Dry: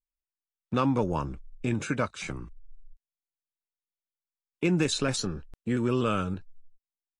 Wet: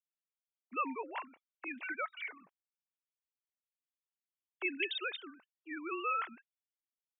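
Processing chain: sine-wave speech; differentiator; gain +8.5 dB

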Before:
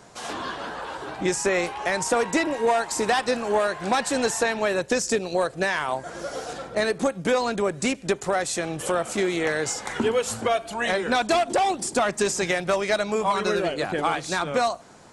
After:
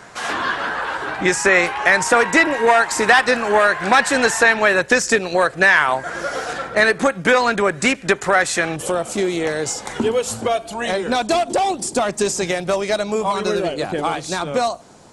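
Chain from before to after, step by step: bell 1700 Hz +10 dB 1.4 oct, from 8.76 s -5 dB; gain +4.5 dB

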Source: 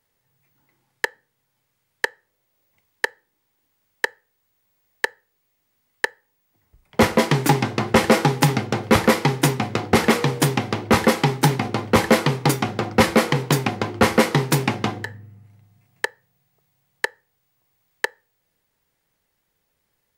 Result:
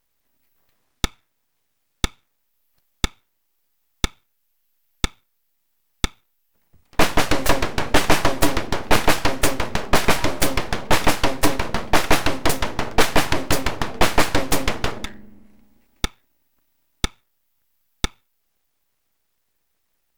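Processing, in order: full-wave rectifier; gain +2.5 dB

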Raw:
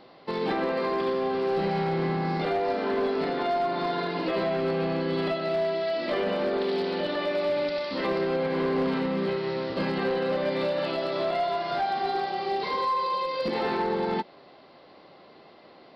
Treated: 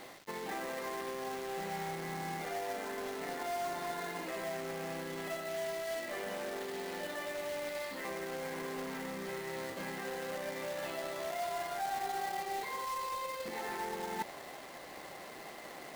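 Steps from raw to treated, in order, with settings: bell 1900 Hz +10.5 dB 0.63 oct; reverse; compressor 20:1, threshold -39 dBFS, peak gain reduction 17.5 dB; reverse; dynamic EQ 800 Hz, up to +6 dB, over -57 dBFS, Q 1.8; companded quantiser 4-bit

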